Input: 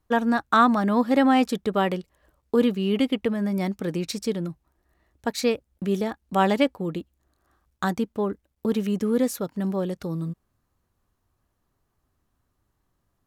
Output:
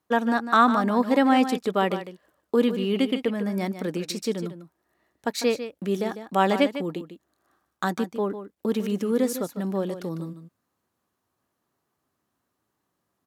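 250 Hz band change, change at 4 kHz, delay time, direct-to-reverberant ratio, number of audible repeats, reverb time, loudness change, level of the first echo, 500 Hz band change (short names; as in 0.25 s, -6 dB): -1.5 dB, +0.5 dB, 0.15 s, none, 1, none, -0.5 dB, -11.0 dB, 0.0 dB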